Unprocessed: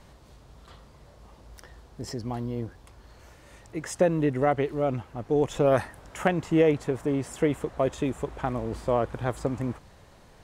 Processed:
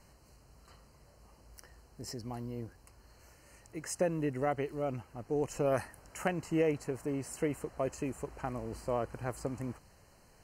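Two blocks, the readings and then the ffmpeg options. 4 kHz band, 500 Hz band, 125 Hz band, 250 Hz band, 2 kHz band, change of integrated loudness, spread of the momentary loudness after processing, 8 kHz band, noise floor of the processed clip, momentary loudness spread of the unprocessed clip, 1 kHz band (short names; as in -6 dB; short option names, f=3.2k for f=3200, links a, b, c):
-8.0 dB, -9.0 dB, -9.0 dB, -9.0 dB, -7.5 dB, -8.5 dB, 12 LU, -2.0 dB, -62 dBFS, 13 LU, -8.5 dB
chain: -af "asuperstop=centerf=3500:order=20:qfactor=4,aemphasis=mode=production:type=cd,volume=-8.5dB"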